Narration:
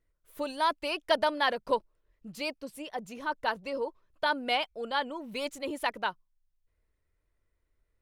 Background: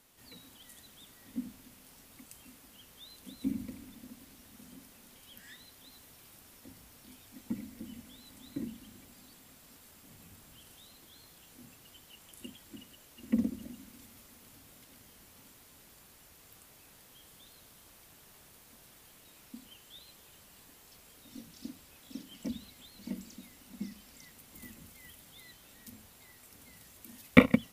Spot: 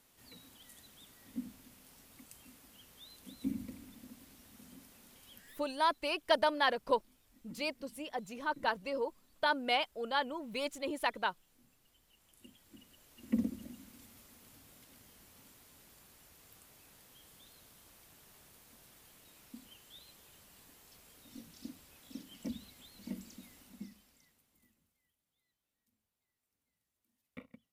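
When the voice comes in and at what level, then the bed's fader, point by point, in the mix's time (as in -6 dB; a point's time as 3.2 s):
5.20 s, -2.5 dB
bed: 5.36 s -3 dB
5.74 s -15 dB
12.02 s -15 dB
13.35 s -3 dB
23.59 s -3 dB
25.14 s -32 dB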